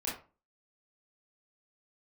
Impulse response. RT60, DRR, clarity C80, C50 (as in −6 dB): 0.35 s, −7.0 dB, 12.0 dB, 5.5 dB